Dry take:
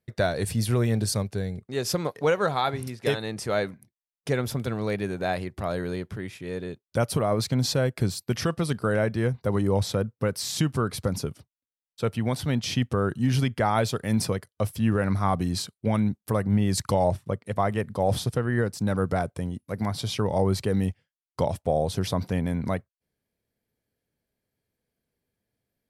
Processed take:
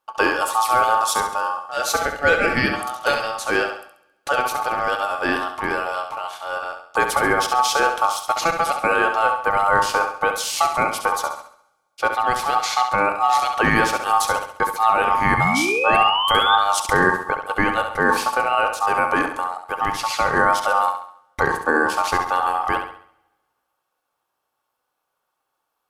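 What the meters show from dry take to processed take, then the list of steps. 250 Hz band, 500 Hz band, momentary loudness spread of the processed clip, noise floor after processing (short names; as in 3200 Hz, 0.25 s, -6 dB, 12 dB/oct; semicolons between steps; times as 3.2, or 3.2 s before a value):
-2.0 dB, +3.0 dB, 8 LU, -77 dBFS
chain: painted sound rise, 15.37–16.56, 1100–2600 Hz -26 dBFS; de-hum 136.1 Hz, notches 37; ring modulator 1000 Hz; on a send: flutter echo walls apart 11.6 m, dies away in 0.53 s; on the sum: two-slope reverb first 0.21 s, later 1.6 s, from -20 dB, DRR 17.5 dB; gain +8 dB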